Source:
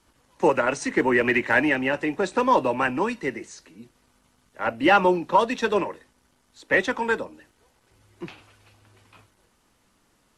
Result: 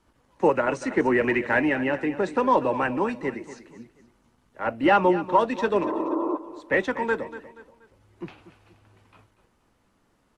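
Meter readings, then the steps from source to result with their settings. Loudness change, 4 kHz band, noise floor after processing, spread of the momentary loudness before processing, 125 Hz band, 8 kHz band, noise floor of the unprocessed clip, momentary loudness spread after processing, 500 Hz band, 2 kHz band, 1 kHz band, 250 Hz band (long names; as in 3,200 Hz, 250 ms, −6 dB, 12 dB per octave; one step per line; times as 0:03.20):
−1.5 dB, −6.0 dB, −67 dBFS, 14 LU, 0.0 dB, can't be measured, −66 dBFS, 17 LU, 0.0 dB, −3.5 dB, −1.0 dB, +0.5 dB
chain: healed spectral selection 0:05.86–0:06.34, 240–1,400 Hz before
high-shelf EQ 2,400 Hz −10 dB
on a send: repeating echo 239 ms, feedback 37%, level −14.5 dB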